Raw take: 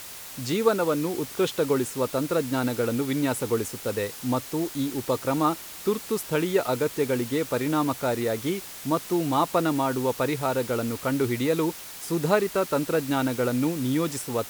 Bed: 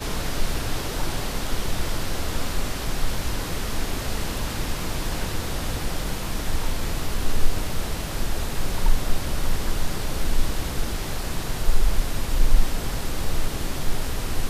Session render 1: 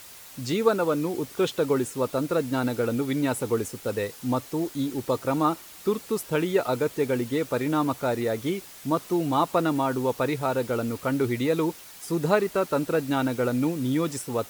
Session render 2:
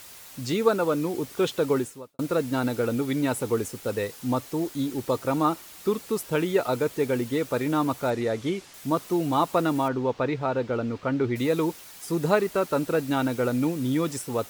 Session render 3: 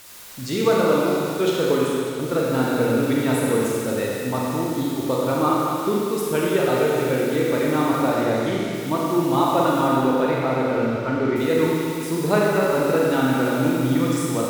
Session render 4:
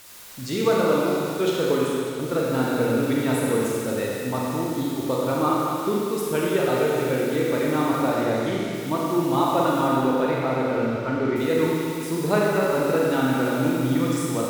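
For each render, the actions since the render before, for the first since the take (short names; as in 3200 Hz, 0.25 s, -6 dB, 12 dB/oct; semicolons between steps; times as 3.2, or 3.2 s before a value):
denoiser 6 dB, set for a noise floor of -41 dBFS
1.78–2.19 fade out quadratic; 8.1–8.74 LPF 7600 Hz; 9.88–11.36 air absorption 160 m
delay with a stepping band-pass 0.198 s, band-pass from 1700 Hz, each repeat 0.7 oct, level -6 dB; Schroeder reverb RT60 2.3 s, combs from 31 ms, DRR -4 dB
gain -2 dB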